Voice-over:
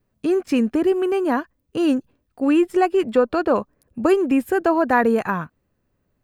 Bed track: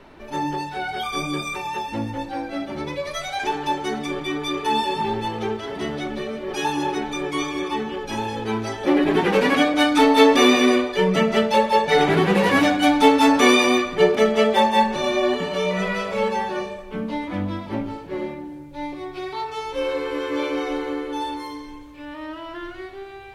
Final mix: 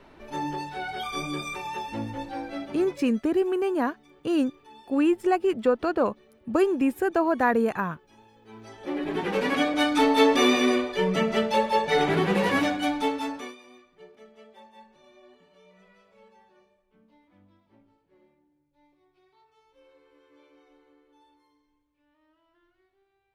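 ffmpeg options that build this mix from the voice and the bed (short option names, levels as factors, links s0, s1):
-filter_complex "[0:a]adelay=2500,volume=0.562[s0];[1:a]volume=7.94,afade=t=out:st=2.53:d=0.62:silence=0.0668344,afade=t=in:st=8.42:d=1.31:silence=0.0668344,afade=t=out:st=12.46:d=1.09:silence=0.0375837[s1];[s0][s1]amix=inputs=2:normalize=0"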